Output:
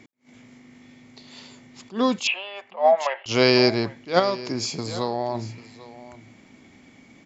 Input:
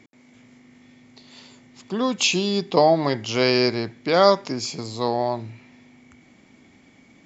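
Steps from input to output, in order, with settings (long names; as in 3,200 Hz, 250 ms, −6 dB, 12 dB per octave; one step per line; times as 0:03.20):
0:02.27–0:03.26: Chebyshev band-pass filter 560–2,900 Hz, order 4
0:04.19–0:05.35: downward compressor 3 to 1, threshold −25 dBFS, peak gain reduction 11.5 dB
single-tap delay 795 ms −18 dB
level that may rise only so fast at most 250 dB per second
level +2 dB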